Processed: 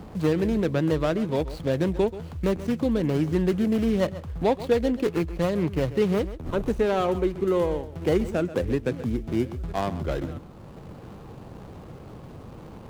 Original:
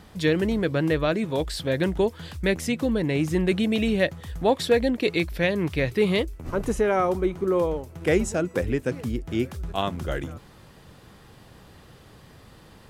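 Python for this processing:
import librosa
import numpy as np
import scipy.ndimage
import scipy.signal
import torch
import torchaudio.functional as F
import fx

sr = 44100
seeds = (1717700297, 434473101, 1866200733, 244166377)

p1 = scipy.ndimage.median_filter(x, 25, mode='constant')
p2 = p1 + fx.echo_single(p1, sr, ms=132, db=-16.0, dry=0)
y = fx.band_squash(p2, sr, depth_pct=40)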